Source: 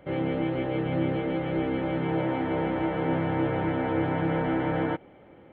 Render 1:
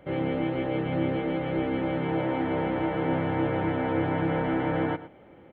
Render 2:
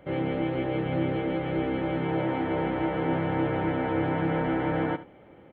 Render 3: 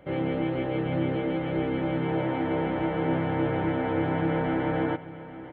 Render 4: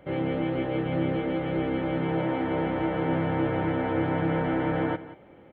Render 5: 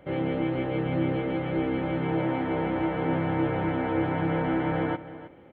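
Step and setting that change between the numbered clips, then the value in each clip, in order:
echo, time: 112, 75, 838, 182, 316 ms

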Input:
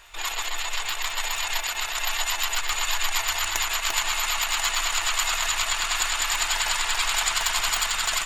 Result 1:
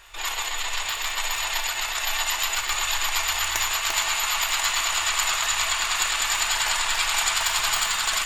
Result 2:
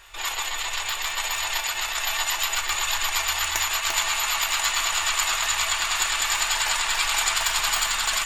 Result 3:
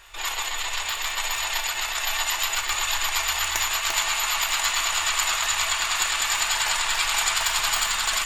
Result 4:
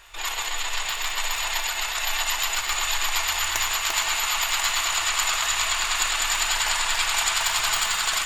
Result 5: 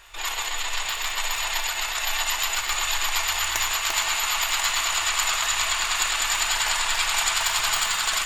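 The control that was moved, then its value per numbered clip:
non-linear reverb, gate: 210, 80, 130, 500, 330 ms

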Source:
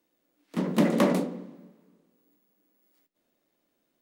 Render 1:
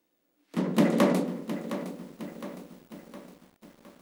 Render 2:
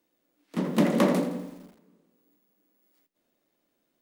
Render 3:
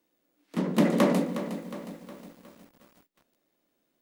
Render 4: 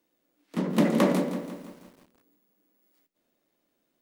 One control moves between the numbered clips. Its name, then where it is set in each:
lo-fi delay, time: 712, 83, 362, 166 ms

